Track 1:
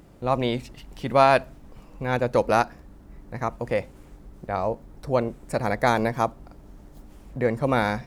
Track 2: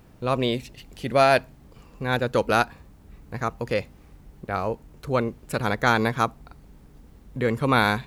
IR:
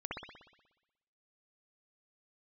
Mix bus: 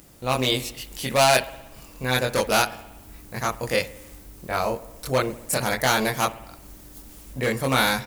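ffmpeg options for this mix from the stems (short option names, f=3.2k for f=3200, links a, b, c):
-filter_complex "[0:a]asoftclip=type=hard:threshold=-15dB,volume=-4.5dB,asplit=2[a][b];[b]volume=-13dB[c];[1:a]dynaudnorm=f=190:g=3:m=13dB,adelay=23,volume=-14dB[d];[2:a]atrim=start_sample=2205[e];[c][e]afir=irnorm=-1:irlink=0[f];[a][d][f]amix=inputs=3:normalize=0,crystalizer=i=6.5:c=0"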